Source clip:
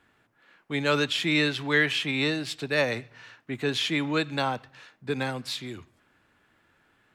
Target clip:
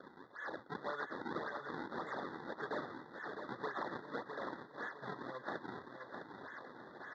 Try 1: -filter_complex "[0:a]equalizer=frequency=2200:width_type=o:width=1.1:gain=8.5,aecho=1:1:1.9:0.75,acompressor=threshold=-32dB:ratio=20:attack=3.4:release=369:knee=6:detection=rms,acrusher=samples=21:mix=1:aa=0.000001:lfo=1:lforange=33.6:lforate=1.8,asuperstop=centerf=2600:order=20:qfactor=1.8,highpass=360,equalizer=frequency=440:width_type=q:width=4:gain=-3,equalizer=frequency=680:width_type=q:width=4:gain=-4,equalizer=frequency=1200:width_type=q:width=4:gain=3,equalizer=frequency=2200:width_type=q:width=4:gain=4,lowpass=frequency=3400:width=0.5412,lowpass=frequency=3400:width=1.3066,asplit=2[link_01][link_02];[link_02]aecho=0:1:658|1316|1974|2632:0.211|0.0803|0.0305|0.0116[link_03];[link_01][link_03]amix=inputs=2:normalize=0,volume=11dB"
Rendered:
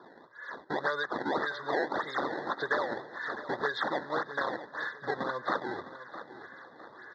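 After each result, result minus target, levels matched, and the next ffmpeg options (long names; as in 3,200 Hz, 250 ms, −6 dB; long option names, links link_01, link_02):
downward compressor: peak gain reduction −10 dB; echo-to-direct −6.5 dB; sample-and-hold swept by an LFO: distortion −6 dB
-filter_complex "[0:a]equalizer=frequency=2200:width_type=o:width=1.1:gain=8.5,aecho=1:1:1.9:0.75,acompressor=threshold=-42.5dB:ratio=20:attack=3.4:release=369:knee=6:detection=rms,acrusher=samples=21:mix=1:aa=0.000001:lfo=1:lforange=33.6:lforate=1.8,asuperstop=centerf=2600:order=20:qfactor=1.8,highpass=360,equalizer=frequency=440:width_type=q:width=4:gain=-3,equalizer=frequency=680:width_type=q:width=4:gain=-4,equalizer=frequency=1200:width_type=q:width=4:gain=3,equalizer=frequency=2200:width_type=q:width=4:gain=4,lowpass=frequency=3400:width=0.5412,lowpass=frequency=3400:width=1.3066,asplit=2[link_01][link_02];[link_02]aecho=0:1:658|1316|1974|2632:0.211|0.0803|0.0305|0.0116[link_03];[link_01][link_03]amix=inputs=2:normalize=0,volume=11dB"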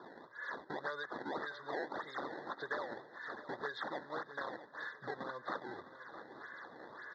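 echo-to-direct −6.5 dB; sample-and-hold swept by an LFO: distortion −6 dB
-filter_complex "[0:a]equalizer=frequency=2200:width_type=o:width=1.1:gain=8.5,aecho=1:1:1.9:0.75,acompressor=threshold=-42.5dB:ratio=20:attack=3.4:release=369:knee=6:detection=rms,acrusher=samples=21:mix=1:aa=0.000001:lfo=1:lforange=33.6:lforate=1.8,asuperstop=centerf=2600:order=20:qfactor=1.8,highpass=360,equalizer=frequency=440:width_type=q:width=4:gain=-3,equalizer=frequency=680:width_type=q:width=4:gain=-4,equalizer=frequency=1200:width_type=q:width=4:gain=3,equalizer=frequency=2200:width_type=q:width=4:gain=4,lowpass=frequency=3400:width=0.5412,lowpass=frequency=3400:width=1.3066,asplit=2[link_01][link_02];[link_02]aecho=0:1:658|1316|1974|2632:0.447|0.17|0.0645|0.0245[link_03];[link_01][link_03]amix=inputs=2:normalize=0,volume=11dB"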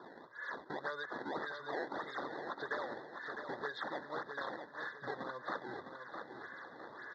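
sample-and-hold swept by an LFO: distortion −6 dB
-filter_complex "[0:a]equalizer=frequency=2200:width_type=o:width=1.1:gain=8.5,aecho=1:1:1.9:0.75,acompressor=threshold=-42.5dB:ratio=20:attack=3.4:release=369:knee=6:detection=rms,acrusher=samples=43:mix=1:aa=0.000001:lfo=1:lforange=68.8:lforate=1.8,asuperstop=centerf=2600:order=20:qfactor=1.8,highpass=360,equalizer=frequency=440:width_type=q:width=4:gain=-3,equalizer=frequency=680:width_type=q:width=4:gain=-4,equalizer=frequency=1200:width_type=q:width=4:gain=3,equalizer=frequency=2200:width_type=q:width=4:gain=4,lowpass=frequency=3400:width=0.5412,lowpass=frequency=3400:width=1.3066,asplit=2[link_01][link_02];[link_02]aecho=0:1:658|1316|1974|2632:0.447|0.17|0.0645|0.0245[link_03];[link_01][link_03]amix=inputs=2:normalize=0,volume=11dB"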